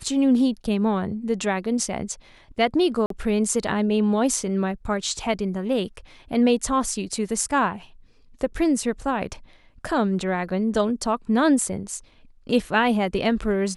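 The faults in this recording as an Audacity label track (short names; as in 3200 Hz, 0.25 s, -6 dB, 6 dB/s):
3.060000	3.100000	gap 43 ms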